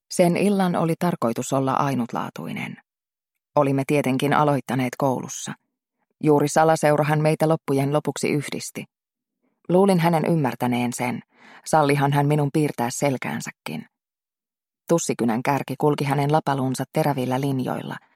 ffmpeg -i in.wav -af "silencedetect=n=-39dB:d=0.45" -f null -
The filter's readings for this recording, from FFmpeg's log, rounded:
silence_start: 2.79
silence_end: 3.56 | silence_duration: 0.77
silence_start: 5.54
silence_end: 6.21 | silence_duration: 0.67
silence_start: 8.84
silence_end: 9.70 | silence_duration: 0.85
silence_start: 13.83
silence_end: 14.88 | silence_duration: 1.05